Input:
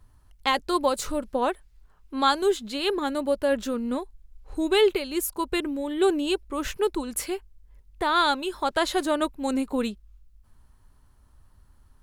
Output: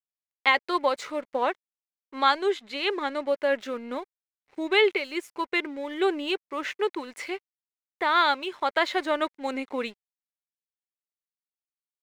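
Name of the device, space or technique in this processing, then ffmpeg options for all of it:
pocket radio on a weak battery: -filter_complex "[0:a]highpass=380,lowpass=4300,aeval=exprs='sgn(val(0))*max(abs(val(0))-0.00251,0)':channel_layout=same,equalizer=frequency=2100:width_type=o:width=0.42:gain=10,asettb=1/sr,asplit=3[link_01][link_02][link_03];[link_01]atrim=end=1.354[link_04];[link_02]atrim=start=1.35:end=3.28,asetpts=PTS-STARTPTS,afade=type=in:duration=0.004:curve=qsin,afade=type=out:start_time=1.926:duration=0.004:curve=qsin,lowpass=11000[link_05];[link_03]atrim=start=3.276[link_06];[link_04][link_05]acrossfade=duration=0.004:curve1=hsin:curve2=qsin[link_07];[link_07][link_06]acrossfade=duration=0.004:curve1=qsin:curve2=hsin"

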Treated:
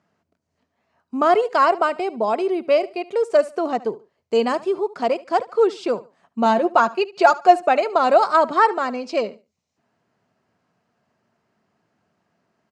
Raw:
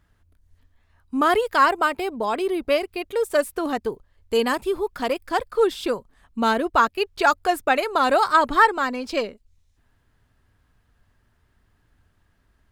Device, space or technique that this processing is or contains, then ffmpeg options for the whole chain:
television speaker: -filter_complex "[0:a]lowshelf=frequency=250:gain=9.5,asettb=1/sr,asplit=3[link_01][link_02][link_03];[link_01]atrim=end=6.454[link_04];[link_02]atrim=start=6.45:end=7.67,asetpts=PTS-STARTPTS,afade=type=in:duration=0.004:curve=qsin,afade=type=out:start_time=1.216:duration=0.004:curve=qsin,aecho=1:1:5.6:0.54,atrim=end_sample=53802[link_05];[link_03]atrim=start=7.666[link_06];[link_04][link_05]acrossfade=duration=0.004:curve1=hsin:curve2=qsin[link_07];[link_07][link_06]acrossfade=duration=0.004:curve1=qsin:curve2=hsin,highpass=frequency=190:width=0.5412,highpass=frequency=190:width=1.3066,equalizer=frequency=280:width_type=q:width=4:gain=-7,equalizer=frequency=670:width_type=q:width=4:gain=7,equalizer=frequency=1700:width_type=q:width=4:gain=-6,equalizer=frequency=3500:width_type=q:width=4:gain=-8,lowpass=frequency=7000:width=0.5412,lowpass=frequency=7000:width=1.3066,aecho=1:1:73|146:0.106|0.0286"

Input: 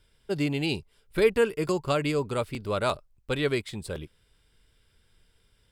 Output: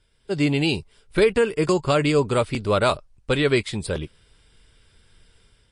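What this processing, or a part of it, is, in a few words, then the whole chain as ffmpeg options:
low-bitrate web radio: -af "dynaudnorm=framelen=150:gausssize=5:maxgain=9dB,alimiter=limit=-8.5dB:level=0:latency=1:release=104" -ar 24000 -c:a libmp3lame -b:a 40k

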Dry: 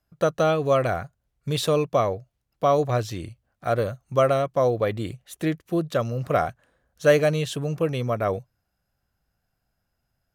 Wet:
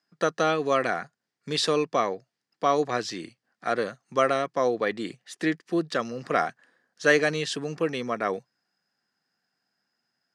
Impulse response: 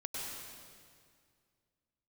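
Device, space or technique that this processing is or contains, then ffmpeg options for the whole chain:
television speaker: -af "highpass=frequency=200:width=0.5412,highpass=frequency=200:width=1.3066,equalizer=frequency=590:width_type=q:width=4:gain=-8,equalizer=frequency=1800:width_type=q:width=4:gain=8,equalizer=frequency=4900:width_type=q:width=4:gain=9,lowpass=frequency=8900:width=0.5412,lowpass=frequency=8900:width=1.3066"

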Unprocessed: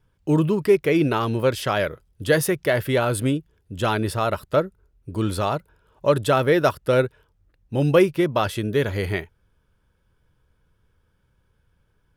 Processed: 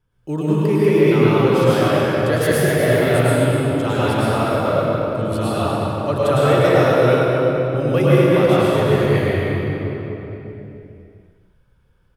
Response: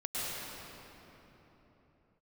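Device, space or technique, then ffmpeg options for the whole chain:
cave: -filter_complex "[0:a]aecho=1:1:247:0.335[link_01];[1:a]atrim=start_sample=2205[link_02];[link_01][link_02]afir=irnorm=-1:irlink=0,volume=-1.5dB"

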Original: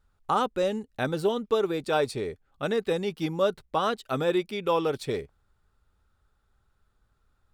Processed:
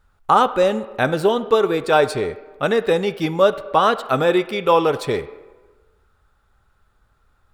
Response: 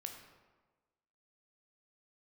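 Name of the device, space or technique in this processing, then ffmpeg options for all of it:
filtered reverb send: -filter_complex "[0:a]asplit=2[link_01][link_02];[link_02]highpass=450,lowpass=3000[link_03];[1:a]atrim=start_sample=2205[link_04];[link_03][link_04]afir=irnorm=-1:irlink=0,volume=-1dB[link_05];[link_01][link_05]amix=inputs=2:normalize=0,volume=7.5dB"

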